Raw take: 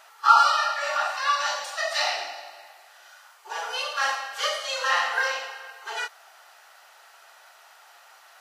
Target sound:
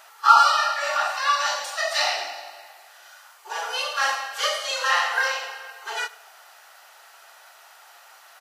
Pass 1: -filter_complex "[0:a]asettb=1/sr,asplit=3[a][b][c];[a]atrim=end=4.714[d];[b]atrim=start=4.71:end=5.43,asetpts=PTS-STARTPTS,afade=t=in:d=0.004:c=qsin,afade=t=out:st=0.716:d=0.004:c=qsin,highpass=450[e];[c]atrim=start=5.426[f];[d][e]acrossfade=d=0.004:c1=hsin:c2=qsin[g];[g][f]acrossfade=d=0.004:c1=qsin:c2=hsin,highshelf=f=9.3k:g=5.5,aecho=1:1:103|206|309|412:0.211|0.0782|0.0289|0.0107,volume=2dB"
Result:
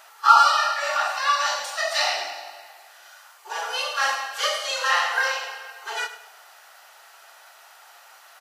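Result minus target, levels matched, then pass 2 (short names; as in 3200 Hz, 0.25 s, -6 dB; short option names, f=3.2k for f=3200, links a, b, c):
echo-to-direct +8.5 dB
-filter_complex "[0:a]asettb=1/sr,asplit=3[a][b][c];[a]atrim=end=4.714[d];[b]atrim=start=4.71:end=5.43,asetpts=PTS-STARTPTS,afade=t=in:d=0.004:c=qsin,afade=t=out:st=0.716:d=0.004:c=qsin,highpass=450[e];[c]atrim=start=5.426[f];[d][e]acrossfade=d=0.004:c1=hsin:c2=qsin[g];[g][f]acrossfade=d=0.004:c1=qsin:c2=hsin,highshelf=f=9.3k:g=5.5,aecho=1:1:103|206|309:0.0794|0.0294|0.0109,volume=2dB"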